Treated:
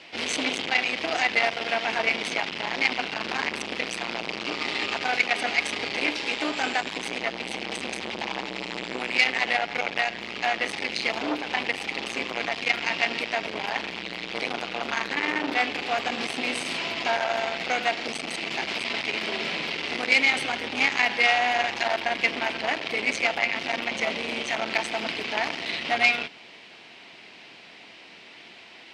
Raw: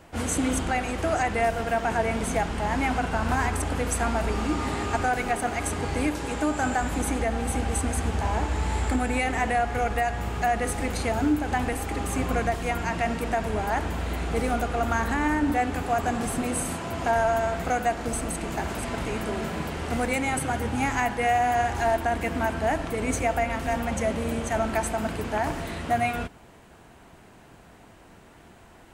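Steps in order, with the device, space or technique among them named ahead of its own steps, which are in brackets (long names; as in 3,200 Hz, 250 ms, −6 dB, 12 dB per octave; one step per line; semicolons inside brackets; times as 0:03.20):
flat-topped bell 3,300 Hz +15.5 dB
public-address speaker with an overloaded transformer (saturating transformer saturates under 2,400 Hz; band-pass filter 250–6,700 Hz)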